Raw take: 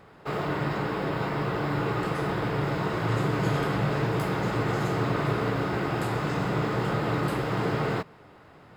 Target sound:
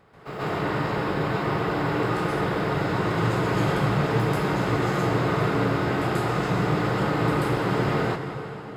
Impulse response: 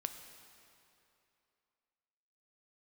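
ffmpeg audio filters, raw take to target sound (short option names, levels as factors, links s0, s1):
-filter_complex "[0:a]asplit=2[s0][s1];[1:a]atrim=start_sample=2205,asetrate=26019,aresample=44100,adelay=136[s2];[s1][s2]afir=irnorm=-1:irlink=0,volume=2[s3];[s0][s3]amix=inputs=2:normalize=0,volume=0.562"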